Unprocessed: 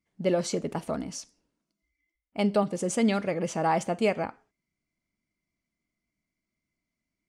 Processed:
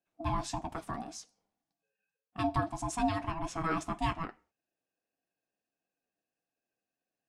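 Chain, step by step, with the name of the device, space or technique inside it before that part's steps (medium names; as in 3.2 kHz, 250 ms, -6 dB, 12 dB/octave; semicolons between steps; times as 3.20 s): alien voice (ring modulator 490 Hz; flange 1.7 Hz, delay 5.3 ms, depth 4.9 ms, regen -48%)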